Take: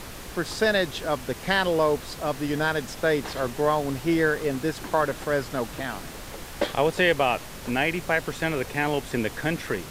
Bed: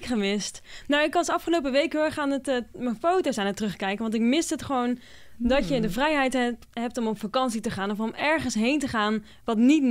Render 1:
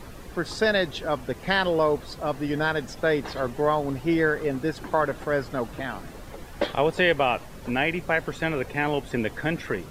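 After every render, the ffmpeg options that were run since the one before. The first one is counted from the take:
-af "afftdn=nr=10:nf=-40"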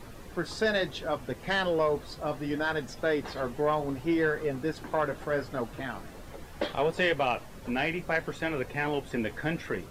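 -af "flanger=delay=8.3:depth=5:regen=-51:speed=0.69:shape=sinusoidal,asoftclip=type=tanh:threshold=0.168"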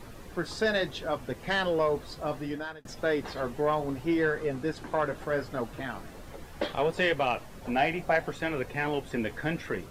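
-filter_complex "[0:a]asettb=1/sr,asplit=3[s0][s1][s2];[s0]atrim=end=4.184[s3];[s1]atrim=start=4.18:end=5.15,asetpts=PTS-STARTPTS,afade=t=in:d=0.004:c=qsin,afade=t=out:st=0.966:d=0.004:c=qsin,lowpass=12000[s4];[s2]atrim=start=5.146[s5];[s3][s4]acrossfade=d=0.004:c1=hsin:c2=qsin[s6];[s6][s5]acrossfade=d=0.004:c1=qsin:c2=hsin,asettb=1/sr,asplit=3[s7][s8][s9];[s7]atrim=end=7.614[s10];[s8]atrim=start=7.61:end=8.3,asetpts=PTS-STARTPTS,afade=t=in:d=0.004:c=qsin,afade=t=out:st=0.686:d=0.004:c=qsin,equalizer=f=720:t=o:w=0.34:g=10.5[s11];[s9]atrim=start=8.296[s12];[s10][s11]acrossfade=d=0.004:c1=hsin:c2=qsin[s13];[s13][s12]acrossfade=d=0.004:c1=qsin:c2=hsin,asplit=2[s14][s15];[s14]atrim=end=2.85,asetpts=PTS-STARTPTS,afade=t=out:st=2.38:d=0.47[s16];[s15]atrim=start=2.85,asetpts=PTS-STARTPTS,afade=t=in:d=0.004:c=hsin[s17];[s16][s17]concat=n=2:v=0:a=1"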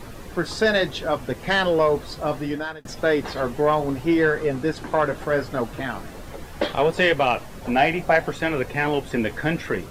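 -af "volume=2.37"

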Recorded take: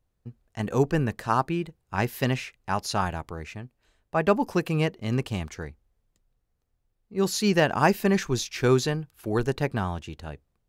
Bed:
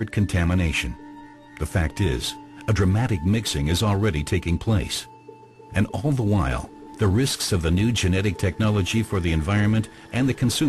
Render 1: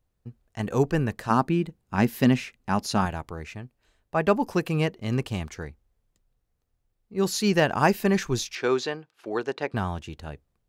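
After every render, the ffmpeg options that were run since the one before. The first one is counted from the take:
-filter_complex "[0:a]asettb=1/sr,asplit=3[s0][s1][s2];[s0]atrim=end=1.304[s3];[s1]atrim=start=1.3:end=3.06,asetpts=PTS-STARTPTS,afade=t=in:d=0.004:c=qsin,afade=t=out:st=1.756:d=0.004:c=qsin,equalizer=f=230:t=o:w=0.75:g=11[s4];[s2]atrim=start=3.056[s5];[s3][s4]acrossfade=d=0.004:c1=hsin:c2=qsin[s6];[s6][s5]acrossfade=d=0.004:c1=qsin:c2=hsin,asettb=1/sr,asplit=3[s7][s8][s9];[s7]atrim=end=8.554[s10];[s8]atrim=start=8.55:end=9.74,asetpts=PTS-STARTPTS,afade=t=in:d=0.004:c=qsin,afade=t=out:st=1.186:d=0.004:c=qsin,highpass=350,lowpass=4900[s11];[s9]atrim=start=9.736[s12];[s10][s11]acrossfade=d=0.004:c1=hsin:c2=qsin[s13];[s13][s12]acrossfade=d=0.004:c1=qsin:c2=hsin"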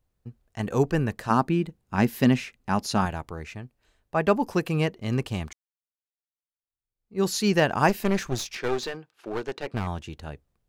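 -filter_complex "[0:a]asettb=1/sr,asplit=3[s0][s1][s2];[s0]atrim=end=7.894[s3];[s1]atrim=start=7.89:end=9.87,asetpts=PTS-STARTPTS,afade=t=in:d=0.004:c=qsin,afade=t=out:st=1.976:d=0.004:c=qsin,aeval=exprs='clip(val(0),-1,0.0251)':c=same[s4];[s2]atrim=start=9.866[s5];[s3][s4]acrossfade=d=0.004:c1=hsin:c2=qsin[s6];[s6][s5]acrossfade=d=0.004:c1=qsin:c2=hsin,asplit=2[s7][s8];[s7]atrim=end=5.53,asetpts=PTS-STARTPTS,afade=t=out:st=5.526:d=0.004:c=hsin[s9];[s8]atrim=start=5.53,asetpts=PTS-STARTPTS,afade=t=in:d=1.67:c=exp[s10];[s9][s10]concat=n=2:v=0:a=1"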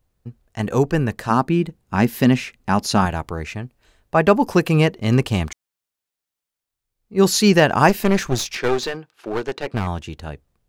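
-filter_complex "[0:a]asplit=2[s0][s1];[s1]alimiter=limit=0.178:level=0:latency=1:release=256,volume=1[s2];[s0][s2]amix=inputs=2:normalize=0,dynaudnorm=f=250:g=21:m=3.76"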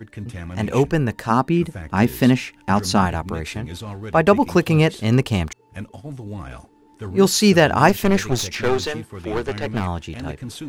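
-filter_complex "[1:a]volume=0.266[s0];[0:a][s0]amix=inputs=2:normalize=0"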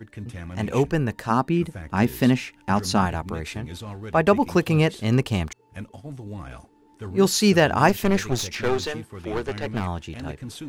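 -af "volume=0.668"

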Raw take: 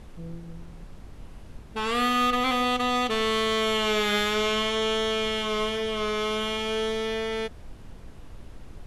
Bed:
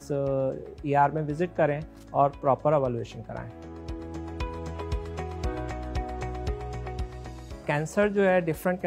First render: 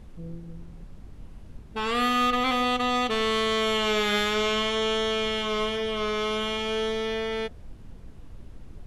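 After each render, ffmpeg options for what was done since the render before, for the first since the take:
-af "afftdn=nr=6:nf=-45"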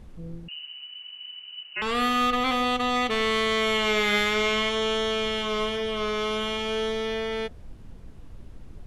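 -filter_complex "[0:a]asettb=1/sr,asplit=3[s0][s1][s2];[s0]atrim=end=0.484[s3];[s1]atrim=start=0.48:end=1.82,asetpts=PTS-STARTPTS,afade=t=in:d=0.004:c=qsin,afade=t=out:st=1.336:d=0.004:c=qsin,lowpass=f=2600:t=q:w=0.5098,lowpass=f=2600:t=q:w=0.6013,lowpass=f=2600:t=q:w=0.9,lowpass=f=2600:t=q:w=2.563,afreqshift=-3000[s4];[s2]atrim=start=1.816[s5];[s3][s4]acrossfade=d=0.004:c1=hsin:c2=qsin[s6];[s6][s5]acrossfade=d=0.004:c1=qsin:c2=hsin,asettb=1/sr,asplit=3[s7][s8][s9];[s7]atrim=end=2.964[s10];[s8]atrim=start=2.96:end=4.69,asetpts=PTS-STARTPTS,afade=t=in:d=0.004:c=qsin,afade=t=out:st=1.726:d=0.004:c=qsin,equalizer=f=2100:t=o:w=0.23:g=7.5[s11];[s9]atrim=start=4.686[s12];[s10][s11]acrossfade=d=0.004:c1=hsin:c2=qsin[s13];[s13][s12]acrossfade=d=0.004:c1=qsin:c2=hsin"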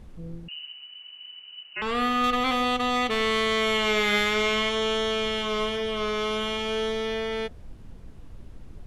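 -filter_complex "[0:a]asettb=1/sr,asplit=3[s0][s1][s2];[s0]atrim=end=0.724[s3];[s1]atrim=start=0.72:end=2.24,asetpts=PTS-STARTPTS,afade=t=in:d=0.004:c=qsin,afade=t=out:st=1.516:d=0.004:c=qsin,highshelf=f=3700:g=-7.5[s4];[s2]atrim=start=2.236[s5];[s3][s4]acrossfade=d=0.004:c1=hsin:c2=qsin[s6];[s6][s5]acrossfade=d=0.004:c1=qsin:c2=hsin,asettb=1/sr,asplit=3[s7][s8][s9];[s7]atrim=end=2.794[s10];[s8]atrim=start=2.79:end=3.21,asetpts=PTS-STARTPTS,afade=t=in:d=0.004:c=qsin,afade=t=out:st=0.416:d=0.004:c=qsin,asoftclip=type=hard:threshold=0.126[s11];[s9]atrim=start=3.206[s12];[s10][s11]acrossfade=d=0.004:c1=hsin:c2=qsin[s13];[s13][s12]acrossfade=d=0.004:c1=qsin:c2=hsin,asettb=1/sr,asplit=3[s14][s15][s16];[s14]atrim=end=4.384[s17];[s15]atrim=start=4.38:end=4.94,asetpts=PTS-STARTPTS,afade=t=in:d=0.004:c=qsin,afade=t=out:st=0.556:d=0.004:c=qsin,asoftclip=type=hard:threshold=0.15[s18];[s16]atrim=start=4.936[s19];[s17][s18]acrossfade=d=0.004:c1=hsin:c2=qsin[s20];[s20][s19]acrossfade=d=0.004:c1=qsin:c2=hsin"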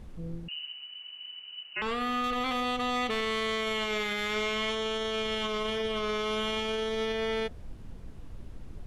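-af "alimiter=limit=0.0708:level=0:latency=1:release=27"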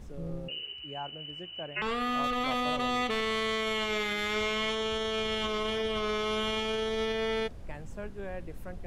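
-filter_complex "[1:a]volume=0.126[s0];[0:a][s0]amix=inputs=2:normalize=0"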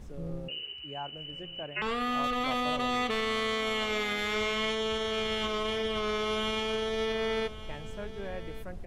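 -af "aecho=1:1:1153:0.168"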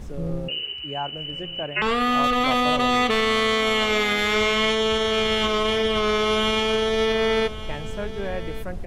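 -af "volume=2.99"

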